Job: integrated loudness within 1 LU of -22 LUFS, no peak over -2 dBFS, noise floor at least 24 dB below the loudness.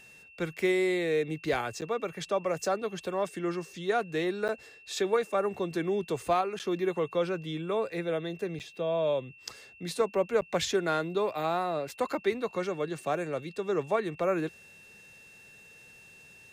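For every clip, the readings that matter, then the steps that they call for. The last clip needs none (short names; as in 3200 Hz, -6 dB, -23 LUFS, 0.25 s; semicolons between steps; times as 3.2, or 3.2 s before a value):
dropouts 5; longest dropout 8.6 ms; steady tone 2700 Hz; tone level -52 dBFS; loudness -31.0 LUFS; peak -16.0 dBFS; loudness target -22.0 LUFS
-> interpolate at 1.81/4.48/6.59/8.59/10.41, 8.6 ms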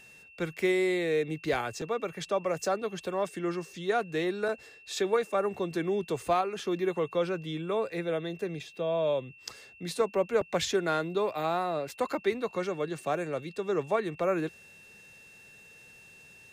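dropouts 0; steady tone 2700 Hz; tone level -52 dBFS
-> notch 2700 Hz, Q 30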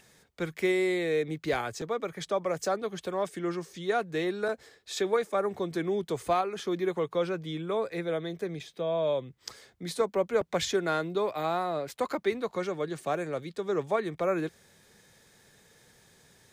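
steady tone none; loudness -31.0 LUFS; peak -16.0 dBFS; loudness target -22.0 LUFS
-> gain +9 dB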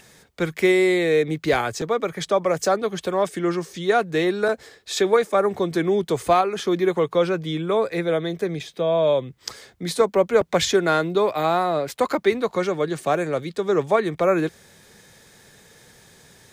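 loudness -22.0 LUFS; peak -7.0 dBFS; noise floor -54 dBFS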